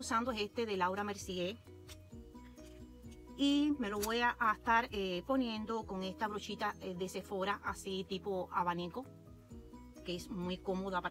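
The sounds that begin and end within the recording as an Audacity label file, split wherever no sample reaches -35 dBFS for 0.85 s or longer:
3.400000	8.990000	sound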